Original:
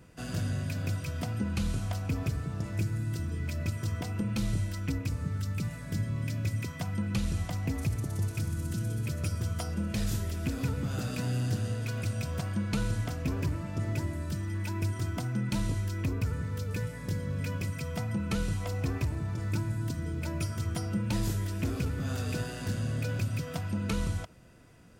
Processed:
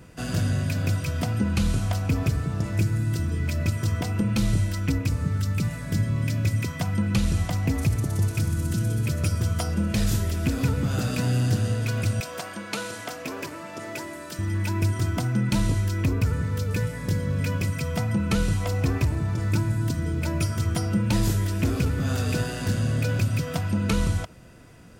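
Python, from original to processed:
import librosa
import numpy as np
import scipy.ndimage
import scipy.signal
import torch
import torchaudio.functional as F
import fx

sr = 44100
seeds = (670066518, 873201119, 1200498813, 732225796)

y = fx.highpass(x, sr, hz=430.0, slope=12, at=(12.2, 14.39))
y = y * 10.0 ** (7.5 / 20.0)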